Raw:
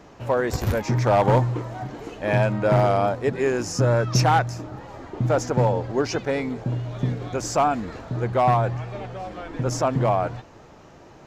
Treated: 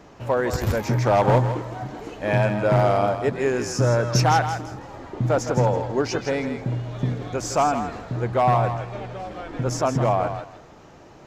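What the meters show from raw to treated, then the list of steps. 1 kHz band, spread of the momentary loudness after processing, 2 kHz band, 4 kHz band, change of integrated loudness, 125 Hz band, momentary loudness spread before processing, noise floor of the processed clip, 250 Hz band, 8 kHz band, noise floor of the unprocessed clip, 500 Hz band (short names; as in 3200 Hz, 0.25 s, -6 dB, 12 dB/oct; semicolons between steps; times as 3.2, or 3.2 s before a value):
+0.5 dB, 14 LU, +0.5 dB, +0.5 dB, 0.0 dB, 0.0 dB, 15 LU, -47 dBFS, 0.0 dB, +0.5 dB, -48 dBFS, +0.5 dB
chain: thinning echo 0.162 s, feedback 22%, level -8 dB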